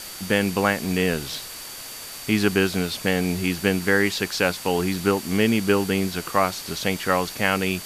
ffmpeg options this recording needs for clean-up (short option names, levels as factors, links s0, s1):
-af "bandreject=f=4600:w=30,afwtdn=0.016"